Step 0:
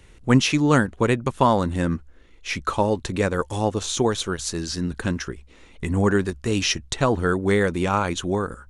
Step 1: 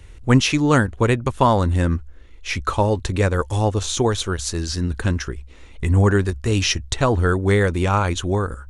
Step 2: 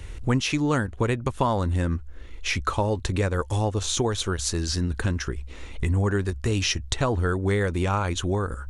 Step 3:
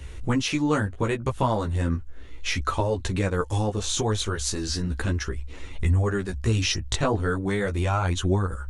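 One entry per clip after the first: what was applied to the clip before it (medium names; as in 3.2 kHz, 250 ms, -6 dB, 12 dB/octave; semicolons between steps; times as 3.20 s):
resonant low shelf 120 Hz +6.5 dB, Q 1.5; trim +2 dB
compression 2.5:1, threshold -31 dBFS, peak gain reduction 14.5 dB; trim +5 dB
chorus voices 2, 0.36 Hz, delay 15 ms, depth 4.6 ms; trim +2.5 dB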